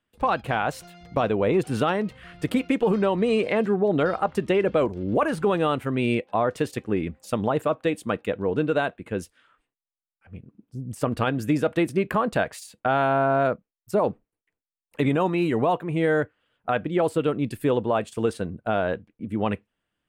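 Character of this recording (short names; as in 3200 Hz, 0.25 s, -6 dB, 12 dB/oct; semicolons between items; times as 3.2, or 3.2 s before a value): noise floor -91 dBFS; spectral tilt -5.5 dB/oct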